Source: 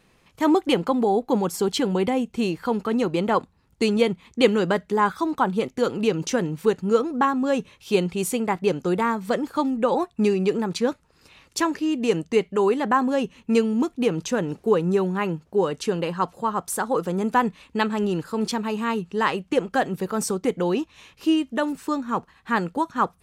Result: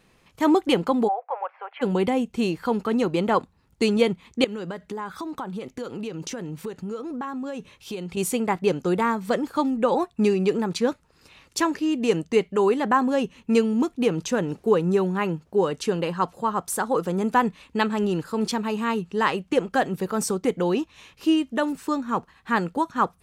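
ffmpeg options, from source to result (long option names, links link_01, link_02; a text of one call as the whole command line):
ffmpeg -i in.wav -filter_complex "[0:a]asplit=3[link_01][link_02][link_03];[link_01]afade=type=out:start_time=1.07:duration=0.02[link_04];[link_02]asuperpass=centerf=1200:order=12:qfactor=0.62,afade=type=in:start_time=1.07:duration=0.02,afade=type=out:start_time=1.81:duration=0.02[link_05];[link_03]afade=type=in:start_time=1.81:duration=0.02[link_06];[link_04][link_05][link_06]amix=inputs=3:normalize=0,asettb=1/sr,asplit=3[link_07][link_08][link_09];[link_07]atrim=end=4.444[link_10];[link_08]atrim=start=4.44:end=8.17,asetpts=PTS-STARTPTS,afade=type=in:duration=0.004:curve=qsin,afade=type=out:start_time=3.726:duration=0.004:curve=qsin,acompressor=threshold=-29dB:ratio=6:attack=3.2:release=140:knee=1:detection=peak[link_11];[link_09]atrim=start=8.166[link_12];[link_10][link_11]acrossfade=duration=0.004:curve1=hsin:curve2=qsin[link_13];[link_13][link_12]acrossfade=duration=0.004:curve1=qsin:curve2=hsin" out.wav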